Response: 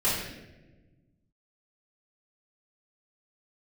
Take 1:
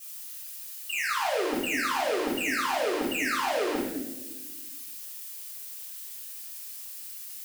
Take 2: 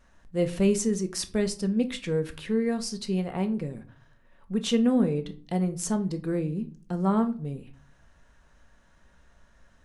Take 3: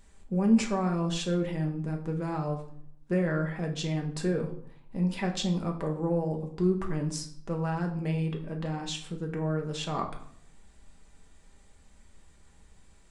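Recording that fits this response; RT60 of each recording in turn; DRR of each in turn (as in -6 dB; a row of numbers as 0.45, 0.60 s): 1; 1.2, 0.45, 0.65 s; -12.5, 7.0, 2.0 dB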